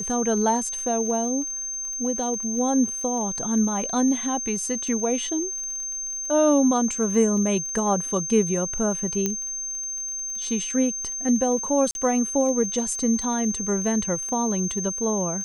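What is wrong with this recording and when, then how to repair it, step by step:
surface crackle 31 per second −33 dBFS
whistle 6,300 Hz −28 dBFS
0:09.26: click −10 dBFS
0:11.91–0:11.95: drop-out 41 ms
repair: click removal
notch filter 6,300 Hz, Q 30
repair the gap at 0:11.91, 41 ms

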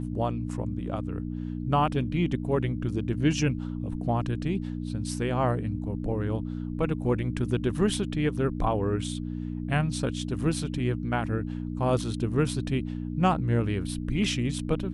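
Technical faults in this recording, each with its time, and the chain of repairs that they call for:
mains hum 60 Hz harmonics 5 −33 dBFS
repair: hum removal 60 Hz, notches 5

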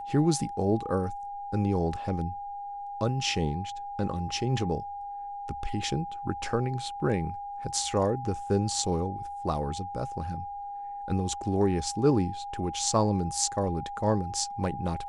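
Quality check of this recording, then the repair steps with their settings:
whistle 810 Hz −35 dBFS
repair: notch filter 810 Hz, Q 30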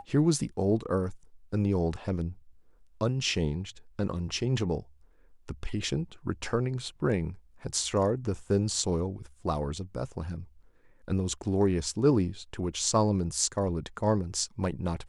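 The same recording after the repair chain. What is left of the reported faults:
none of them is left

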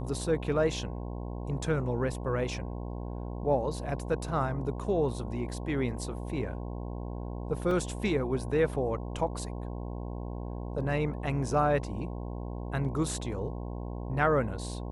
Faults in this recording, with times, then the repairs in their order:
mains buzz 60 Hz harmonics 18 −37 dBFS
0:07.71: drop-out 2.6 ms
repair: hum removal 60 Hz, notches 18
repair the gap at 0:07.71, 2.6 ms

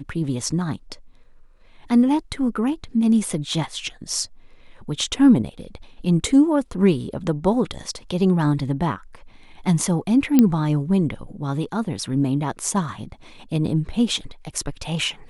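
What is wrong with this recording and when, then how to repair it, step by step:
0:10.39: click −3 dBFS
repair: click removal

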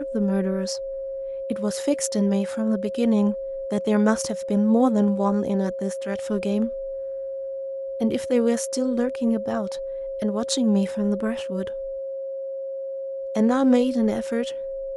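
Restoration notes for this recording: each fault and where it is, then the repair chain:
whistle 540 Hz −28 dBFS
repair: notch filter 540 Hz, Q 30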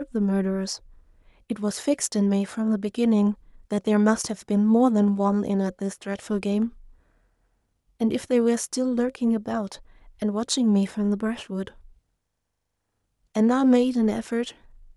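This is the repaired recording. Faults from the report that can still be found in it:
none of them is left

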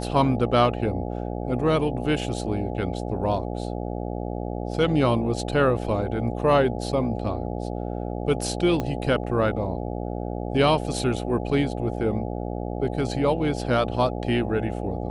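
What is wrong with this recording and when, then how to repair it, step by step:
mains buzz 60 Hz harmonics 14 −30 dBFS
0:08.80: click −14 dBFS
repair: click removal
hum removal 60 Hz, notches 14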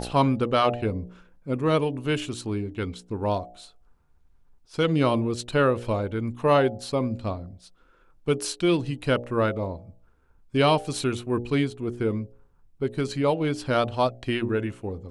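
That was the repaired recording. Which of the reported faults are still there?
0:08.80: click

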